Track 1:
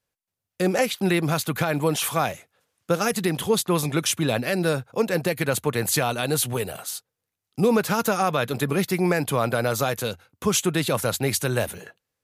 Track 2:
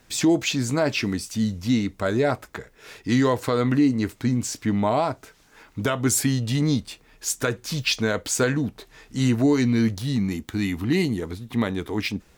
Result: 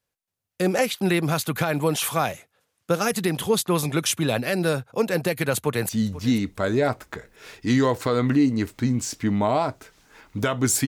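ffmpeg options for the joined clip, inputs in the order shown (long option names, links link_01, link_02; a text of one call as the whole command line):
ffmpeg -i cue0.wav -i cue1.wav -filter_complex "[0:a]apad=whole_dur=10.87,atrim=end=10.87,atrim=end=5.892[link_01];[1:a]atrim=start=1.308:end=6.29[link_02];[link_01][link_02]acrossfade=duration=0.004:curve1=hsin:curve2=hsin,asplit=2[link_03][link_04];[link_04]afade=type=in:start_time=5.57:duration=0.01,afade=type=out:start_time=5.89:duration=0.01,aecho=0:1:490|980|1470:0.149624|0.0448871|0.0134661[link_05];[link_03][link_05]amix=inputs=2:normalize=0" out.wav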